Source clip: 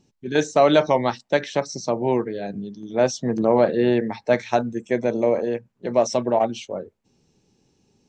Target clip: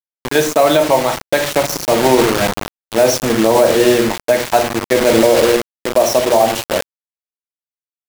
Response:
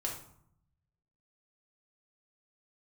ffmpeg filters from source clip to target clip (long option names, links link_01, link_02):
-filter_complex "[0:a]highpass=60,equalizer=frequency=120:width=0.45:gain=-5,bandreject=frequency=60:width_type=h:width=6,bandreject=frequency=120:width_type=h:width=6,bandreject=frequency=180:width_type=h:width=6,bandreject=frequency=240:width_type=h:width=6,bandreject=frequency=300:width_type=h:width=6,bandreject=frequency=360:width_type=h:width=6,asplit=2[link_01][link_02];[1:a]atrim=start_sample=2205,lowshelf=frequency=480:gain=2.5[link_03];[link_02][link_03]afir=irnorm=-1:irlink=0,volume=-2dB[link_04];[link_01][link_04]amix=inputs=2:normalize=0,acrusher=bits=3:mix=0:aa=0.000001,dynaudnorm=framelen=320:gausssize=3:maxgain=11.5dB,alimiter=level_in=5.5dB:limit=-1dB:release=50:level=0:latency=1,volume=-1dB"